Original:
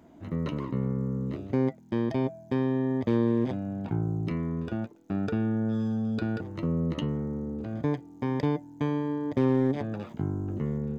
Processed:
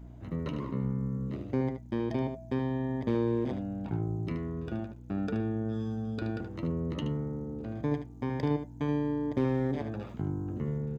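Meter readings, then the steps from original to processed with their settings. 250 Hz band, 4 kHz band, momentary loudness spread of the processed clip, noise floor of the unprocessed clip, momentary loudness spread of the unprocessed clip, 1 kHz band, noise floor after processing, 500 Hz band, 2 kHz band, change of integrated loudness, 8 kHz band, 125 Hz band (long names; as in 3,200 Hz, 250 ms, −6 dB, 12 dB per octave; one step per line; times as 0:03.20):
−4.0 dB, −3.0 dB, 6 LU, −52 dBFS, 7 LU, −2.5 dB, −47 dBFS, −3.0 dB, −3.0 dB, −3.5 dB, can't be measured, −2.5 dB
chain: mains hum 60 Hz, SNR 14 dB
single-tap delay 75 ms −8.5 dB
level −3.5 dB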